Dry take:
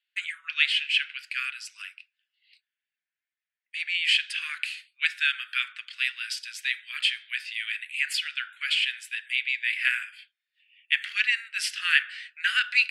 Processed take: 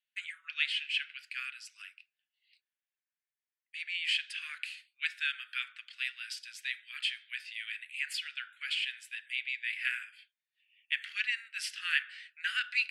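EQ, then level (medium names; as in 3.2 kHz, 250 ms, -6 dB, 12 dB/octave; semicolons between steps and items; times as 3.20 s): high-pass 1 kHz 24 dB/octave; -8.5 dB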